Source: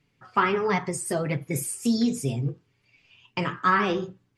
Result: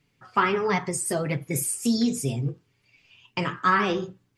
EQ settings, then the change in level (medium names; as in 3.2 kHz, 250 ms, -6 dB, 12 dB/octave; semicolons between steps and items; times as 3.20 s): treble shelf 4.9 kHz +5 dB; 0.0 dB